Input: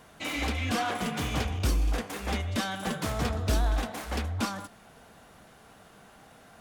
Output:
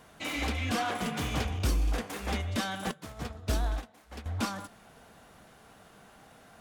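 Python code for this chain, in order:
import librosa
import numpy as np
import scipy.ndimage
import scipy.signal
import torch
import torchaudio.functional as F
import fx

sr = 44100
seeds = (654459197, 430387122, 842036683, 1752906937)

y = fx.upward_expand(x, sr, threshold_db=-35.0, expansion=2.5, at=(2.91, 4.26))
y = y * 10.0 ** (-1.5 / 20.0)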